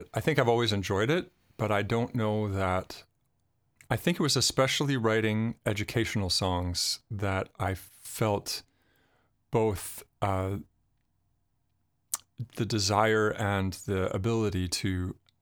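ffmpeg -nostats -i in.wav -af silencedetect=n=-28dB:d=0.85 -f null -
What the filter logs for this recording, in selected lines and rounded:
silence_start: 2.90
silence_end: 3.91 | silence_duration: 1.00
silence_start: 8.57
silence_end: 9.54 | silence_duration: 0.98
silence_start: 10.57
silence_end: 12.14 | silence_duration: 1.56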